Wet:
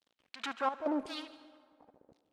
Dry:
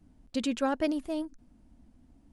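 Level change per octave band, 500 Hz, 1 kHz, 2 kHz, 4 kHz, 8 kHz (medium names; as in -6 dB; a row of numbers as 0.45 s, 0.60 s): -5.5 dB, +0.5 dB, -1.5 dB, -2.0 dB, -10.0 dB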